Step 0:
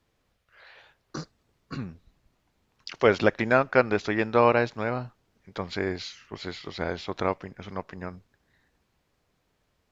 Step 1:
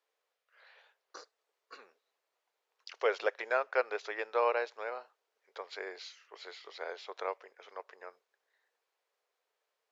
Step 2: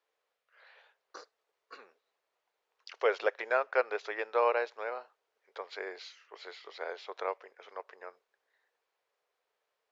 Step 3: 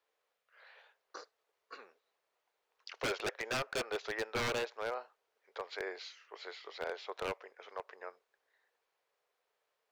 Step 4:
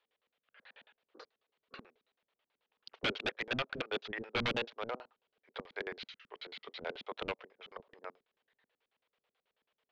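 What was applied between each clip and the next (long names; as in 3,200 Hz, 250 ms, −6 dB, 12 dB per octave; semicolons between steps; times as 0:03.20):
Chebyshev high-pass filter 440 Hz, order 4; level −8.5 dB
high-shelf EQ 6,400 Hz −9.5 dB; level +2 dB
wave folding −28.5 dBFS
auto-filter low-pass square 9.2 Hz 230–3,300 Hz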